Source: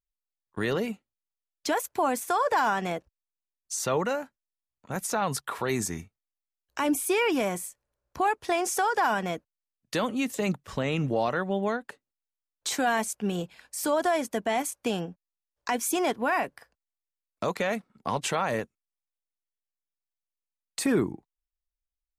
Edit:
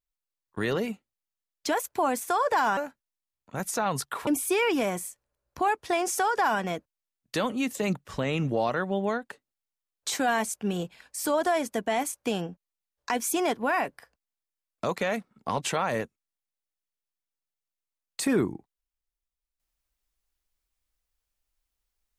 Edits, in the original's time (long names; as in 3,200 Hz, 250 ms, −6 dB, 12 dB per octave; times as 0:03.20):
0:02.77–0:04.13: remove
0:05.63–0:06.86: remove